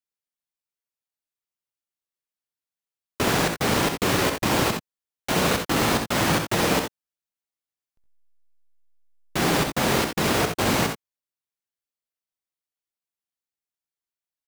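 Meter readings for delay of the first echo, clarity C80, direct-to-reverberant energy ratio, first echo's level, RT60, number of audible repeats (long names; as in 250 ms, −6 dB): 66 ms, no reverb audible, no reverb audible, −7.0 dB, no reverb audible, 1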